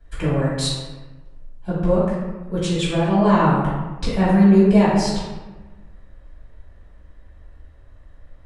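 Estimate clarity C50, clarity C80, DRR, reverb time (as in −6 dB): −1.0 dB, 2.0 dB, −11.0 dB, 1.2 s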